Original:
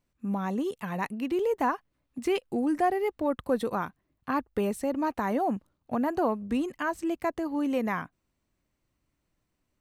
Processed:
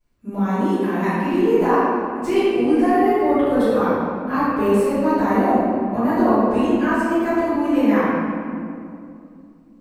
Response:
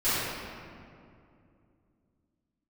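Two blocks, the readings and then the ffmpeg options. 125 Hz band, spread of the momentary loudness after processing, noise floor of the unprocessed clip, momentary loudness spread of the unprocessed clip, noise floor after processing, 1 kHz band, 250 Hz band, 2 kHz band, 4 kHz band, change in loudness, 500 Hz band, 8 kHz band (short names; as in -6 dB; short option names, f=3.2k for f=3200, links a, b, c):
+11.5 dB, 8 LU, -79 dBFS, 8 LU, -47 dBFS, +10.0 dB, +12.0 dB, +10.0 dB, +8.0 dB, +11.0 dB, +11.5 dB, n/a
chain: -filter_complex "[1:a]atrim=start_sample=2205[a];[0:a][a]afir=irnorm=-1:irlink=0,volume=-4dB"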